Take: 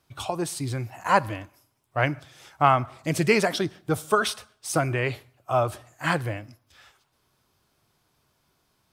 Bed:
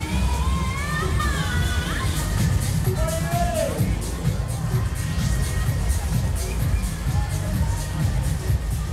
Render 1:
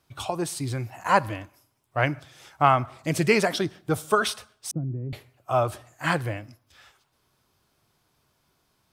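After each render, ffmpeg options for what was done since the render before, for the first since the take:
-filter_complex "[0:a]asettb=1/sr,asplit=3[a][b][c];[a]atrim=end=4.714[d];[b]atrim=start=4.71:end=5.13,asetpts=PTS-STARTPTS,afade=t=in:d=0.004:c=qsin,afade=t=out:st=0.416:d=0.004:c=qsin,asuperpass=centerf=180:order=4:qfactor=1.2[e];[c]atrim=start=5.126[f];[d][e]acrossfade=d=0.004:c1=hsin:c2=qsin[g];[g][f]acrossfade=d=0.004:c1=qsin:c2=hsin"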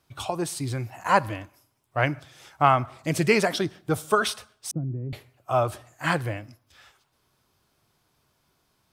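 -af anull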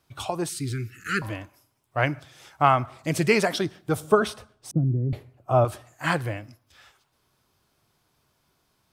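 -filter_complex "[0:a]asettb=1/sr,asplit=3[a][b][c];[a]atrim=end=0.494[d];[b]atrim=start=0.49:end=1.22,asetpts=PTS-STARTPTS,afade=t=in:d=0.004:c=qsin,afade=t=out:st=0.726:d=0.004:c=qsin,asuperstop=centerf=760:order=20:qfactor=0.97[e];[c]atrim=start=1.216[f];[d][e]acrossfade=d=0.004:c1=hsin:c2=qsin[g];[g][f]acrossfade=d=0.004:c1=qsin:c2=hsin,asettb=1/sr,asplit=3[h][i][j];[h]atrim=end=4.004[k];[i]atrim=start=4:end=5.65,asetpts=PTS-STARTPTS,afade=t=in:d=0.004:c=qsin,afade=t=out:st=1.646:d=0.004:c=qsin,tiltshelf=f=970:g=7.5[l];[j]atrim=start=5.646[m];[k][l]acrossfade=d=0.004:c1=hsin:c2=qsin[n];[n][m]acrossfade=d=0.004:c1=qsin:c2=hsin"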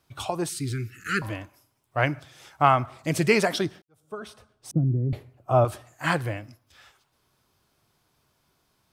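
-filter_complex "[0:a]asplit=2[a][b];[a]atrim=end=3.82,asetpts=PTS-STARTPTS,afade=t=out:st=3.816:d=0.004:c=hsin[c];[b]atrim=start=3.82,asetpts=PTS-STARTPTS,afade=t=in:d=0.93:c=qua[d];[c][d]concat=n=2:v=0:a=1"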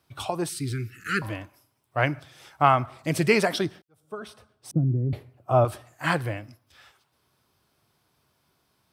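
-af "highpass=57,equalizer=f=6.8k:w=4.7:g=-5"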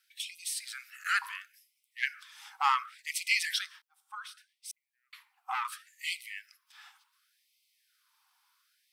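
-filter_complex "[0:a]acrossover=split=2200[a][b];[a]asoftclip=type=tanh:threshold=-18dB[c];[c][b]amix=inputs=2:normalize=0,afftfilt=real='re*gte(b*sr/1024,730*pow(2000/730,0.5+0.5*sin(2*PI*0.69*pts/sr)))':imag='im*gte(b*sr/1024,730*pow(2000/730,0.5+0.5*sin(2*PI*0.69*pts/sr)))':win_size=1024:overlap=0.75"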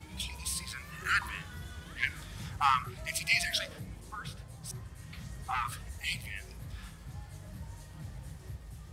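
-filter_complex "[1:a]volume=-22dB[a];[0:a][a]amix=inputs=2:normalize=0"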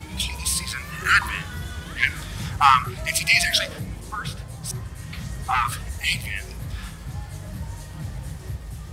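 -af "volume=11.5dB,alimiter=limit=-3dB:level=0:latency=1"

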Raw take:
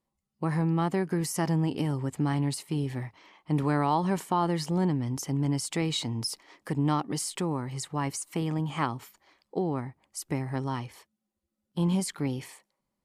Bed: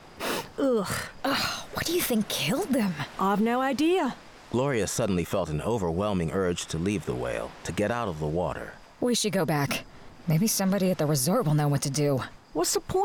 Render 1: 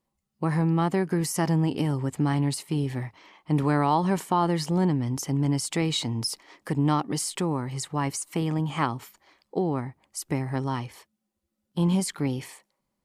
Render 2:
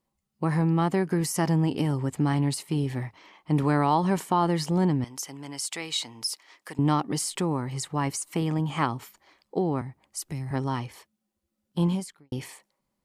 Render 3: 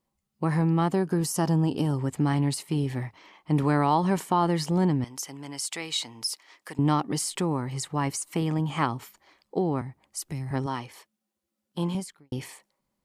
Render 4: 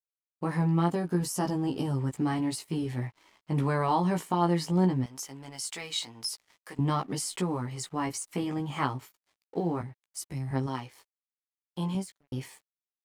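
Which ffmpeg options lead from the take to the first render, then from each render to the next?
-af "volume=3dB"
-filter_complex "[0:a]asettb=1/sr,asplit=3[a][b][c];[a]atrim=end=5.044[d];[b]atrim=start=5.04:end=6.79,asetpts=PTS-STARTPTS,afade=t=in:d=0.004:c=qsin,afade=t=out:st=1.746:d=0.004:c=qsin,highpass=f=1.4k:p=1[e];[c]atrim=start=6.786[f];[d][e]acrossfade=d=0.004:c1=hsin:c2=qsin[g];[g][f]acrossfade=d=0.004:c1=qsin:c2=hsin,asettb=1/sr,asplit=3[h][i][j];[h]atrim=end=9.814[k];[i]atrim=start=9.81:end=10.51,asetpts=PTS-STARTPTS,afade=t=in:d=0.004:c=qsin,afade=t=out:st=0.696:d=0.004:c=qsin,acrossover=split=170|3000[l][m][n];[m]acompressor=threshold=-42dB:ratio=6:attack=3.2:release=140:knee=2.83:detection=peak[o];[l][o][n]amix=inputs=3:normalize=0[p];[j]atrim=start=10.506[q];[k][p]acrossfade=d=0.004:c1=hsin:c2=qsin[r];[r][q]acrossfade=d=0.004:c1=qsin:c2=hsin,asplit=2[s][t];[s]atrim=end=12.32,asetpts=PTS-STARTPTS,afade=t=out:st=11.84:d=0.48:c=qua[u];[t]atrim=start=12.32,asetpts=PTS-STARTPTS,afade=t=in:d=0.004:c=hsin[v];[u][v]concat=n=2:v=0:a=1"
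-filter_complex "[0:a]asettb=1/sr,asplit=3[a][b][c];[a]atrim=end=0.924[d];[b]atrim=start=0.92:end=1.94,asetpts=PTS-STARTPTS,afade=t=in:d=0.004:c=qsin,afade=t=out:st=1.016:d=0.004:c=qsin,equalizer=f=2.1k:t=o:w=0.38:g=-12[e];[c]atrim=start=1.936[f];[d][e]acrossfade=d=0.004:c1=hsin:c2=qsin[g];[g][f]acrossfade=d=0.004:c1=qsin:c2=hsin,asettb=1/sr,asplit=3[h][i][j];[h]atrim=end=10.664[k];[i]atrim=start=10.66:end=11.95,asetpts=PTS-STARTPTS,afade=t=in:d=0.004:c=qsin,afade=t=out:st=1.286:d=0.004:c=qsin,highpass=f=270:p=1[l];[j]atrim=start=11.946[m];[k][l]acrossfade=d=0.004:c1=hsin:c2=qsin[n];[n][m]acrossfade=d=0.004:c1=qsin:c2=hsin"
-af "flanger=delay=15:depth=2.5:speed=0.57,aeval=exprs='sgn(val(0))*max(abs(val(0))-0.00141,0)':c=same"

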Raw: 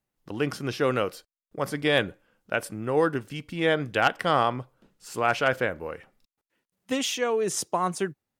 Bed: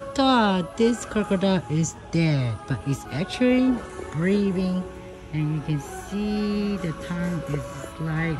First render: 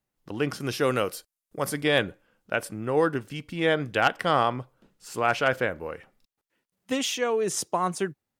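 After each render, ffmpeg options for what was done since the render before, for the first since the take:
-filter_complex "[0:a]asettb=1/sr,asplit=3[a][b][c];[a]atrim=end=0.604[d];[b]atrim=start=0.6:end=1.83,asetpts=PTS-STARTPTS,afade=t=in:d=0.004:c=qsin,afade=t=out:st=1.226:d=0.004:c=qsin,equalizer=f=11k:t=o:w=1.4:g=10.5[e];[c]atrim=start=1.826[f];[d][e]acrossfade=d=0.004:c1=hsin:c2=qsin[g];[g][f]acrossfade=d=0.004:c1=qsin:c2=hsin"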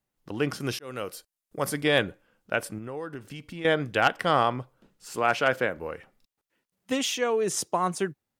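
-filter_complex "[0:a]asettb=1/sr,asplit=3[a][b][c];[a]atrim=end=2.784[d];[b]atrim=start=2.78:end=3.65,asetpts=PTS-STARTPTS,afade=t=in:d=0.004:c=qsin,afade=t=out:st=0.866:d=0.004:c=qsin,acompressor=threshold=-36dB:ratio=3:attack=3.2:release=140:knee=1:detection=peak[e];[c]atrim=start=3.646[f];[d][e]acrossfade=d=0.004:c1=hsin:c2=qsin[g];[g][f]acrossfade=d=0.004:c1=qsin:c2=hsin,asettb=1/sr,asplit=3[h][i][j];[h]atrim=end=5.164[k];[i]atrim=start=5.16:end=5.77,asetpts=PTS-STARTPTS,afade=t=in:d=0.004:c=qsin,afade=t=out:st=0.606:d=0.004:c=qsin,highpass=130[l];[j]atrim=start=5.766[m];[k][l]acrossfade=d=0.004:c1=hsin:c2=qsin[n];[n][m]acrossfade=d=0.004:c1=qsin:c2=hsin,asplit=2[o][p];[o]atrim=end=0.79,asetpts=PTS-STARTPTS,afade=t=out:st=0.786:d=0.004:c=hsin[q];[p]atrim=start=0.79,asetpts=PTS-STARTPTS,afade=t=in:d=0.81:c=qsin[r];[q][r]concat=n=2:v=0:a=1"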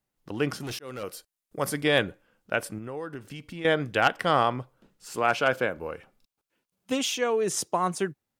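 -filter_complex "[0:a]asettb=1/sr,asplit=3[a][b][c];[a]atrim=end=0.604[d];[b]atrim=start=0.6:end=1.03,asetpts=PTS-STARTPTS,afade=t=in:d=0.004:c=qsin,afade=t=out:st=0.426:d=0.004:c=qsin,volume=31.5dB,asoftclip=hard,volume=-31.5dB[e];[c]atrim=start=1.026[f];[d][e]acrossfade=d=0.004:c1=hsin:c2=qsin[g];[g][f]acrossfade=d=0.004:c1=qsin:c2=hsin,asettb=1/sr,asplit=3[h][i][j];[h]atrim=end=5.304[k];[i]atrim=start=5.3:end=7.19,asetpts=PTS-STARTPTS,afade=t=in:d=0.004:c=qsin,afade=t=out:st=1.886:d=0.004:c=qsin,bandreject=f=1.9k:w=7.9[l];[j]atrim=start=7.186[m];[k][l]acrossfade=d=0.004:c1=hsin:c2=qsin[n];[n][m]acrossfade=d=0.004:c1=qsin:c2=hsin"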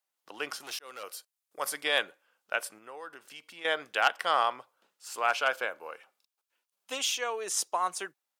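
-af "highpass=830,equalizer=f=1.9k:t=o:w=0.77:g=-3"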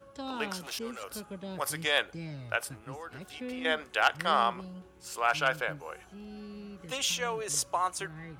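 -filter_complex "[1:a]volume=-19.5dB[a];[0:a][a]amix=inputs=2:normalize=0"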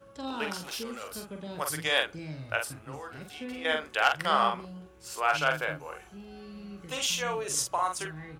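-filter_complex "[0:a]asplit=2[a][b];[b]adelay=45,volume=-5dB[c];[a][c]amix=inputs=2:normalize=0"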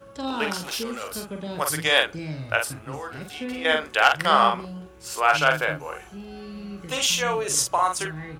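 -af "volume=7dB,alimiter=limit=-2dB:level=0:latency=1"

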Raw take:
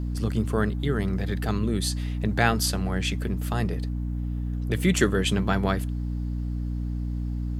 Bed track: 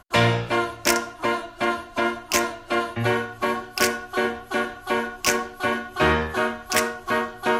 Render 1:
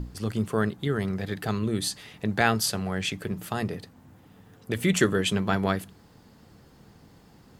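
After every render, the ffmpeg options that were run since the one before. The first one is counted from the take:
-af "bandreject=f=60:t=h:w=6,bandreject=f=120:t=h:w=6,bandreject=f=180:t=h:w=6,bandreject=f=240:t=h:w=6,bandreject=f=300:t=h:w=6"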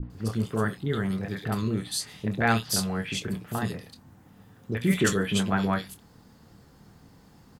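-filter_complex "[0:a]asplit=2[a][b];[b]adelay=26,volume=-11dB[c];[a][c]amix=inputs=2:normalize=0,acrossover=split=480|2700[d][e][f];[e]adelay=30[g];[f]adelay=100[h];[d][g][h]amix=inputs=3:normalize=0"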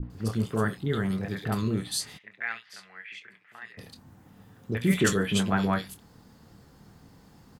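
-filter_complex "[0:a]asplit=3[a][b][c];[a]afade=t=out:st=2.17:d=0.02[d];[b]bandpass=f=2k:t=q:w=4.3,afade=t=in:st=2.17:d=0.02,afade=t=out:st=3.77:d=0.02[e];[c]afade=t=in:st=3.77:d=0.02[f];[d][e][f]amix=inputs=3:normalize=0"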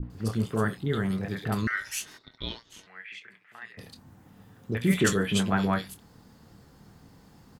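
-filter_complex "[0:a]asettb=1/sr,asplit=3[a][b][c];[a]atrim=end=1.674[d];[b]atrim=start=1.67:end=2.87,asetpts=PTS-STARTPTS,afade=t=in:d=0.004:c=qsin,afade=t=out:st=1.196:d=0.004:c=qsin,aeval=exprs='val(0)*sin(2*PI*1700*n/s)':c=same[e];[c]atrim=start=2.866[f];[d][e]acrossfade=d=0.004:c1=hsin:c2=qsin[g];[g][f]acrossfade=d=0.004:c1=qsin:c2=hsin"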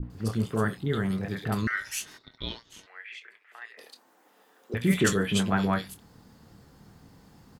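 -filter_complex "[0:a]asettb=1/sr,asplit=3[a][b][c];[a]atrim=end=2.864[d];[b]atrim=start=2.86:end=4.74,asetpts=PTS-STARTPTS,afade=t=in:d=0.004:c=qsin,afade=t=out:st=1.876:d=0.004:c=qsin,highpass=f=380:w=0.5412,highpass=f=380:w=1.3066[e];[c]atrim=start=4.736[f];[d][e]acrossfade=d=0.004:c1=hsin:c2=qsin[g];[g][f]acrossfade=d=0.004:c1=qsin:c2=hsin"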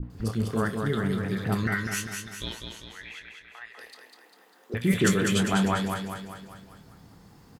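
-af "aecho=1:1:199|398|597|796|995|1194|1393:0.562|0.298|0.158|0.0837|0.0444|0.0235|0.0125"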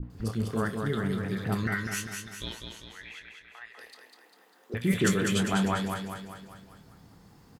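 -af "volume=-2.5dB"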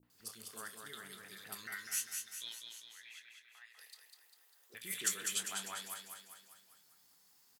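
-af "aderivative"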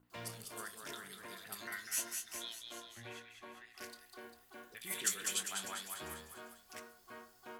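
-filter_complex "[1:a]volume=-29.5dB[a];[0:a][a]amix=inputs=2:normalize=0"

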